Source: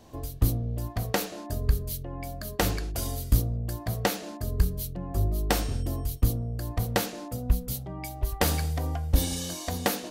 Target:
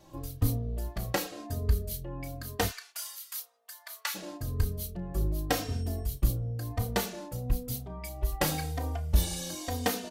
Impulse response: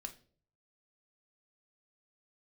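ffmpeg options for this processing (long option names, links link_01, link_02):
-filter_complex "[0:a]asplit=3[link_01][link_02][link_03];[link_01]afade=type=out:start_time=2.66:duration=0.02[link_04];[link_02]highpass=frequency=1100:width=0.5412,highpass=frequency=1100:width=1.3066,afade=type=in:start_time=2.66:duration=0.02,afade=type=out:start_time=4.14:duration=0.02[link_05];[link_03]afade=type=in:start_time=4.14:duration=0.02[link_06];[link_04][link_05][link_06]amix=inputs=3:normalize=0,asplit=2[link_07][link_08];[link_08]adelay=32,volume=-12dB[link_09];[link_07][link_09]amix=inputs=2:normalize=0,asplit=2[link_10][link_11];[link_11]adelay=3.1,afreqshift=-0.96[link_12];[link_10][link_12]amix=inputs=2:normalize=1"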